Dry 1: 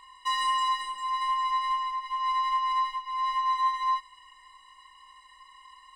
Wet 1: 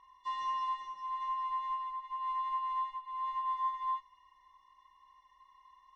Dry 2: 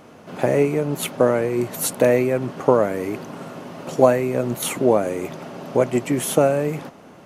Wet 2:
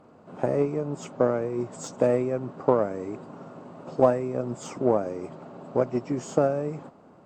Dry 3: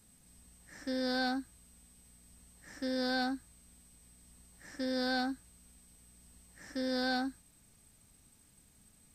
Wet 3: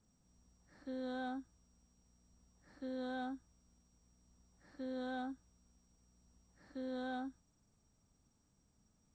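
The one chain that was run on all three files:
hearing-aid frequency compression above 2,700 Hz 1.5 to 1
harmonic generator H 7 −28 dB, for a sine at −0.5 dBFS
flat-topped bell 3,400 Hz −9.5 dB 2.3 octaves
level −5 dB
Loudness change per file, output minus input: −8.5, −6.5, −9.0 LU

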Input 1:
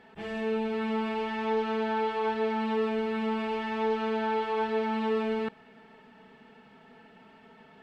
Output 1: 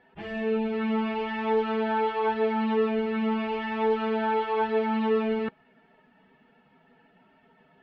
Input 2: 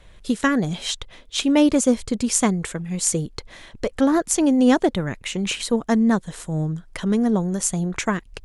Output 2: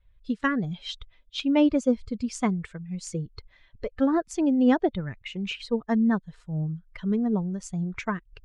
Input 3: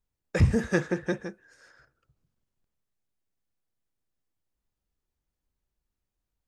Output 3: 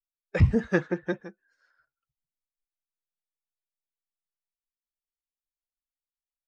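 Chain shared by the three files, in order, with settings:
spectral dynamics exaggerated over time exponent 1.5
low-pass filter 3,600 Hz 12 dB per octave
loudness normalisation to −27 LKFS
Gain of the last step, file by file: +5.0, −3.0, +2.5 decibels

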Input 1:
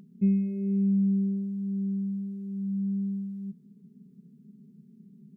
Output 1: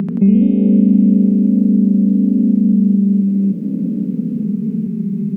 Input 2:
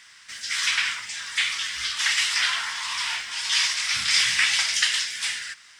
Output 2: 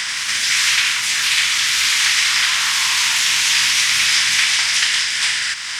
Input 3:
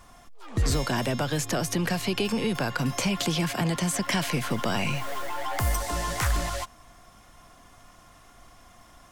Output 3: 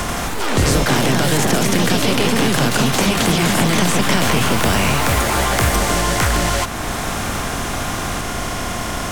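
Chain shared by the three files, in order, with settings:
compressor on every frequency bin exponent 0.6
delay with pitch and tempo change per echo 86 ms, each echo +2 semitones, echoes 3
multiband upward and downward compressor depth 70%
normalise the peak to −2 dBFS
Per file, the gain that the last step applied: +11.5, +1.5, +5.0 decibels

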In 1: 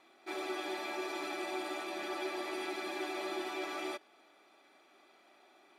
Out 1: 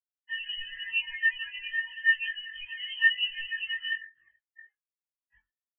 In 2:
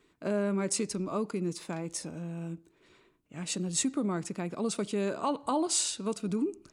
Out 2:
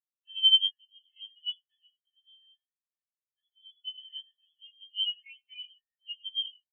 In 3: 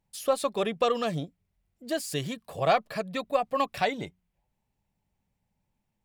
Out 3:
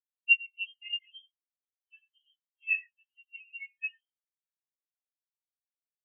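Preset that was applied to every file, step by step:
sub-octave generator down 1 octave, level −1 dB
bit-depth reduction 6 bits, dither triangular
voice inversion scrambler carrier 3,300 Hz
noise gate with hold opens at −32 dBFS
parametric band 1,800 Hz +12.5 dB 0.21 octaves
on a send: multi-tap delay 70/93/134 ms −17/−6.5/−13.5 dB
on the sum: dynamic equaliser 940 Hz, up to −5 dB, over −43 dBFS, Q 0.82
chorus effect 0.62 Hz, delay 18.5 ms, depth 2 ms
double-tracking delay 21 ms −3 dB
every bin expanded away from the loudest bin 4 to 1
normalise the peak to −12 dBFS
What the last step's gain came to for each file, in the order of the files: +13.5, +3.0, −2.0 decibels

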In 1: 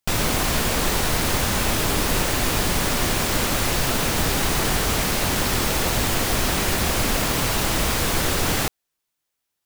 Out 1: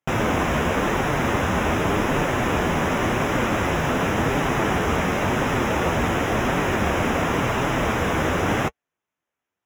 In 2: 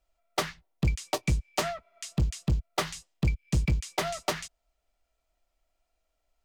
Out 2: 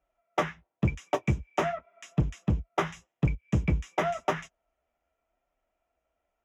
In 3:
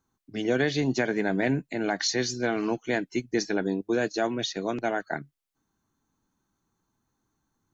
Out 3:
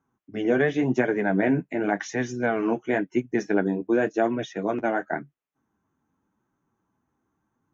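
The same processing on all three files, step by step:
high-pass filter 60 Hz 12 dB per octave
parametric band 100 Hz −4 dB 0.95 octaves
flanger 0.91 Hz, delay 6.6 ms, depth 6.5 ms, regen −31%
moving average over 10 samples
level +7.5 dB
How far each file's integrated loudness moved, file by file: −1.0, +0.5, +2.5 LU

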